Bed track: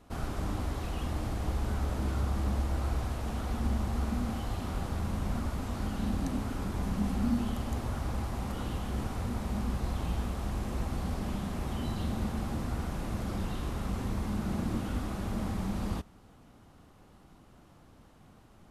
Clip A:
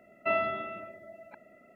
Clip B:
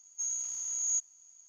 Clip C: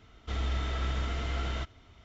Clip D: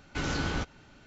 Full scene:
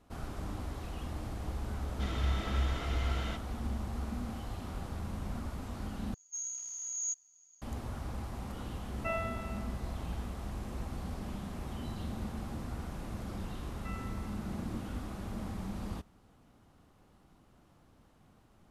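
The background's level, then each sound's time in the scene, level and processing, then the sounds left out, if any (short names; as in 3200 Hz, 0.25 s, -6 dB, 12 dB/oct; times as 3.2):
bed track -6 dB
1.72 add C -2.5 dB
6.14 replace with B -5 dB
8.79 add A -7.5 dB
13.59 add A -16 dB + elliptic band-pass 1000–2500 Hz
not used: D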